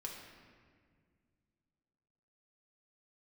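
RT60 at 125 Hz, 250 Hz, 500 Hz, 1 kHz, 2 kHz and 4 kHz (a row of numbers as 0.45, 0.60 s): 2.9, 2.8, 2.1, 1.7, 1.7, 1.2 s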